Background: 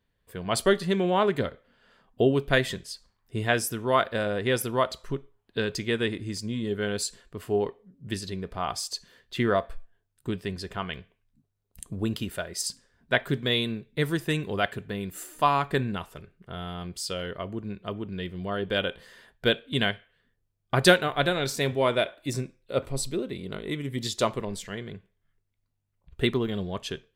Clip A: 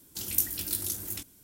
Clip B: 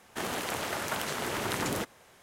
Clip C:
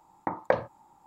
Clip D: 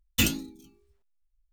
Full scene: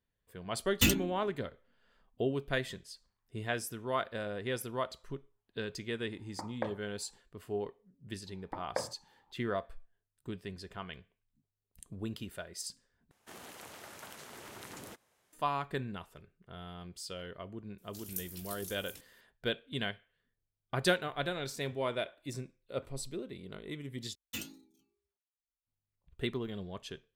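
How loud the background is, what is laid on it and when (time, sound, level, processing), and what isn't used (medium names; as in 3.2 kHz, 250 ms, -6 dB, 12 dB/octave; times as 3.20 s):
background -10.5 dB
0.63 s: add D -2 dB + local Wiener filter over 9 samples
6.12 s: add C -12.5 dB
8.26 s: add C -11 dB + steep low-pass 4.1 kHz
13.11 s: replace with B -17 dB + treble shelf 5.1 kHz +4.5 dB
17.78 s: add A -14 dB
24.15 s: replace with D -16 dB + high-pass 220 Hz 6 dB/octave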